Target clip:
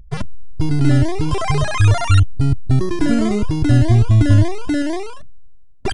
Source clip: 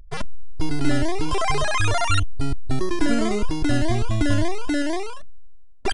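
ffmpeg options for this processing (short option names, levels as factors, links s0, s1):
-af "equalizer=f=120:t=o:w=1.9:g=14"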